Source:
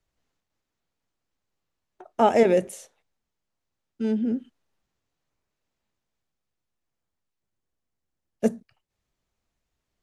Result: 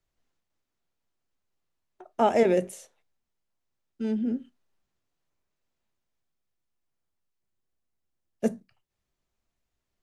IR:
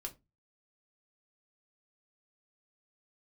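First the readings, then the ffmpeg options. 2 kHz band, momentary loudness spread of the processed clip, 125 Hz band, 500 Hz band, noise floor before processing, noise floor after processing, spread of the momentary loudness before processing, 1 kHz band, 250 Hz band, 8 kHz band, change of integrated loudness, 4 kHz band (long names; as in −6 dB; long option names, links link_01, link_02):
−3.0 dB, 19 LU, −2.5 dB, −3.0 dB, −83 dBFS, −83 dBFS, 19 LU, −3.5 dB, −3.0 dB, −3.0 dB, −3.0 dB, −3.0 dB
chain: -filter_complex "[0:a]asplit=2[link_01][link_02];[1:a]atrim=start_sample=2205,atrim=end_sample=3528[link_03];[link_02][link_03]afir=irnorm=-1:irlink=0,volume=-5dB[link_04];[link_01][link_04]amix=inputs=2:normalize=0,volume=-5.5dB"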